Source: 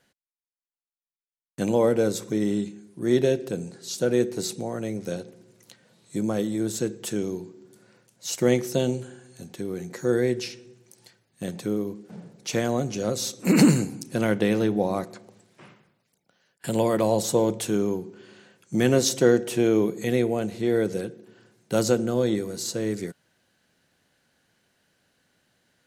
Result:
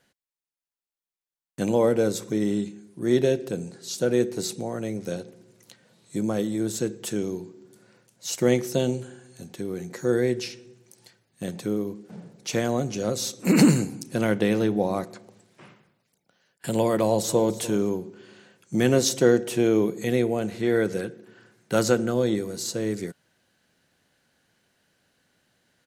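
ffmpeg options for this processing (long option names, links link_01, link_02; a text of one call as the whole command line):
ffmpeg -i in.wav -filter_complex "[0:a]asplit=2[link_01][link_02];[link_02]afade=type=in:start_time=16.98:duration=0.01,afade=type=out:start_time=17.54:duration=0.01,aecho=0:1:290|580:0.149624|0.0299247[link_03];[link_01][link_03]amix=inputs=2:normalize=0,asettb=1/sr,asplit=3[link_04][link_05][link_06];[link_04]atrim=end=20.454[link_07];[link_05]atrim=start=20.45:end=22.12,asetpts=PTS-STARTPTS,afade=type=in:duration=0.004:curve=qsin,afade=type=out:start_time=1.666:duration=0.004:curve=qsin,equalizer=frequency=1600:width_type=o:width=1.2:gain=6[link_08];[link_06]atrim=start=22.116[link_09];[link_07][link_08]acrossfade=duration=0.004:curve1=hsin:curve2=qsin[link_10];[link_10][link_09]acrossfade=duration=0.004:curve1=qsin:curve2=hsin" out.wav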